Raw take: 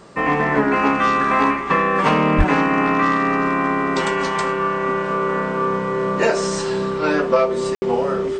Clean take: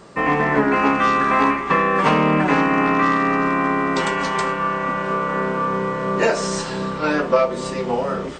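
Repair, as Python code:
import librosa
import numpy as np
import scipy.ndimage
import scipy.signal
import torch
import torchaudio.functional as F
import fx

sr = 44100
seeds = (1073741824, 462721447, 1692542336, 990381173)

y = fx.fix_declip(x, sr, threshold_db=-6.0)
y = fx.notch(y, sr, hz=390.0, q=30.0)
y = fx.highpass(y, sr, hz=140.0, slope=24, at=(2.37, 2.49), fade=0.02)
y = fx.fix_ambience(y, sr, seeds[0], print_start_s=0.0, print_end_s=0.5, start_s=7.75, end_s=7.82)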